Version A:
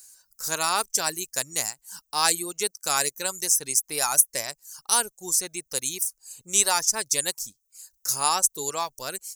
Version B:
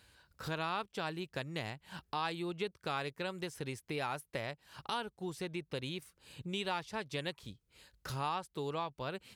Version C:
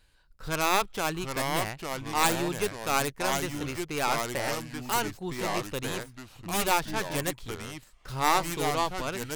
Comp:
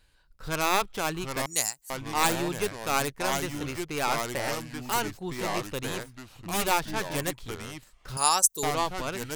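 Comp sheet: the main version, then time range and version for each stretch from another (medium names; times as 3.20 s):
C
1.46–1.90 s: from A
8.17–8.63 s: from A
not used: B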